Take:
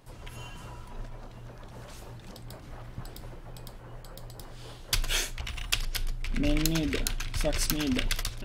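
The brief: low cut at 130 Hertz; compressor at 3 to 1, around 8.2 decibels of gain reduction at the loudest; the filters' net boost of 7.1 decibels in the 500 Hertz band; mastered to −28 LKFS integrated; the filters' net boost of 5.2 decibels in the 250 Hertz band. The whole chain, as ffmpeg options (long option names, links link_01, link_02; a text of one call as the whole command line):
ffmpeg -i in.wav -af "highpass=130,equalizer=frequency=250:width_type=o:gain=4,equalizer=frequency=500:width_type=o:gain=8,acompressor=threshold=-31dB:ratio=3,volume=9.5dB" out.wav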